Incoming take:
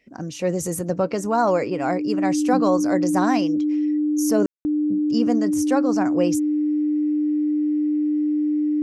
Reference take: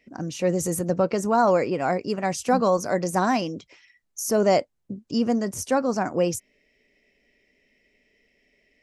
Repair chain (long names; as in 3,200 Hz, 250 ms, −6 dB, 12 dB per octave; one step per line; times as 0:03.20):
notch filter 300 Hz, Q 30
ambience match 0:04.46–0:04.65